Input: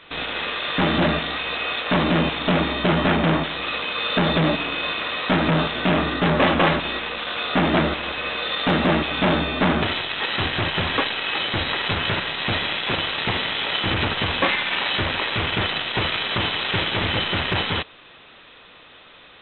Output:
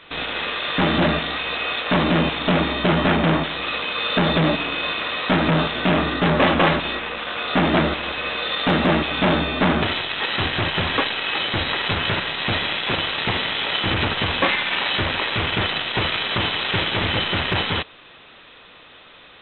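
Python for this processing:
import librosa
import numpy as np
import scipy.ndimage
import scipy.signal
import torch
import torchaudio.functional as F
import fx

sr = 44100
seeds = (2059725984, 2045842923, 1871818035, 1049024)

y = fx.lowpass(x, sr, hz=3400.0, slope=12, at=(6.95, 7.48))
y = y * 10.0 ** (1.0 / 20.0)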